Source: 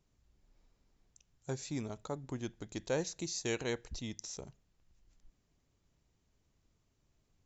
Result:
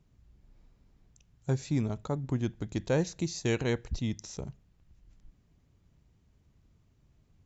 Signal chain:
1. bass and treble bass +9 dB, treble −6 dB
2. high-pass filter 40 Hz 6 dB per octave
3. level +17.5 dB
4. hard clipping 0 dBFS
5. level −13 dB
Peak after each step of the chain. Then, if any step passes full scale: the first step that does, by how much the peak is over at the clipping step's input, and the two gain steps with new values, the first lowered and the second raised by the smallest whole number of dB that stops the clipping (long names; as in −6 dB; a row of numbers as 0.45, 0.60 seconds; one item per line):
−19.5, −19.5, −2.0, −2.0, −15.0 dBFS
no step passes full scale